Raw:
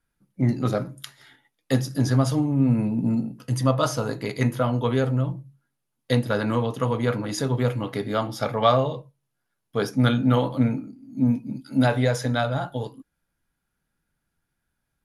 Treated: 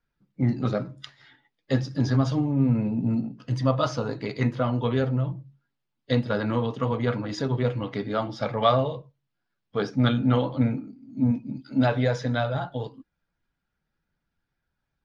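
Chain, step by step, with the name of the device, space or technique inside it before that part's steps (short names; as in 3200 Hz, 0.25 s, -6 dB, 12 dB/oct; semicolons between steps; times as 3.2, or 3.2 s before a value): clip after many re-uploads (LPF 5300 Hz 24 dB/oct; bin magnitudes rounded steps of 15 dB); gain -1.5 dB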